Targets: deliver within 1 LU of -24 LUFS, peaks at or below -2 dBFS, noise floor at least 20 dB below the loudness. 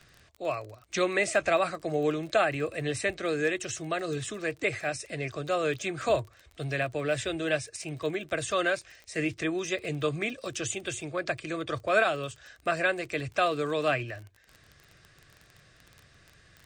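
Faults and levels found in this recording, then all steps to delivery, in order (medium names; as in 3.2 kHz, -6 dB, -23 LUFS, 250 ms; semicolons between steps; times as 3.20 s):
tick rate 26 per s; loudness -30.0 LUFS; peak level -12.5 dBFS; loudness target -24.0 LUFS
-> de-click; trim +6 dB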